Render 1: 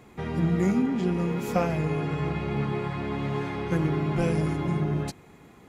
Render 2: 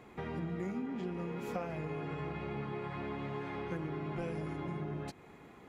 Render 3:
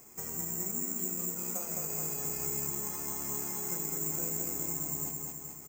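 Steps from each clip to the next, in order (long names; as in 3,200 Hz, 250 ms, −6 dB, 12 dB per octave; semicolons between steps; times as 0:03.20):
bass and treble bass −5 dB, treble −8 dB; downward compressor 3 to 1, threshold −37 dBFS, peak gain reduction 12.5 dB; level −1.5 dB
on a send: repeating echo 213 ms, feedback 59%, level −3 dB; on the sum: bad sample-rate conversion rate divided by 6×, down filtered, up zero stuff; level −7 dB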